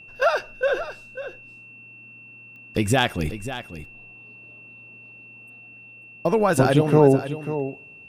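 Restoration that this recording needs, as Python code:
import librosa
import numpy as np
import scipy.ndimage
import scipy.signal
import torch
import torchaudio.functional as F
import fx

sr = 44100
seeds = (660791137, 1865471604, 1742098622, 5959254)

y = fx.fix_declick_ar(x, sr, threshold=10.0)
y = fx.notch(y, sr, hz=2700.0, q=30.0)
y = fx.fix_echo_inverse(y, sr, delay_ms=543, level_db=-12.0)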